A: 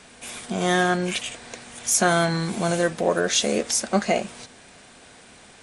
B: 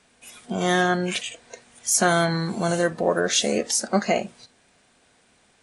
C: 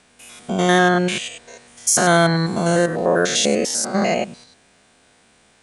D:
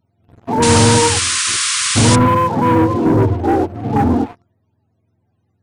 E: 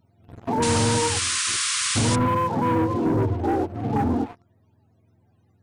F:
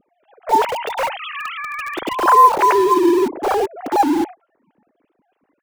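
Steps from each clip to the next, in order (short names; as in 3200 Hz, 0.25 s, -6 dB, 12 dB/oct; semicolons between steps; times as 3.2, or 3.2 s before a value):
spectral noise reduction 12 dB
stepped spectrum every 0.1 s; gain +6.5 dB
spectrum mirrored in octaves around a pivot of 410 Hz; sample leveller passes 3; painted sound noise, 0.62–2.16, 1000–10000 Hz -15 dBFS; gain -2.5 dB
compressor 2:1, threshold -33 dBFS, peak gain reduction 13.5 dB; gain +3 dB
sine-wave speech; in parallel at -10 dB: bit-crush 4-bit; on the sum: gain +3.5 dB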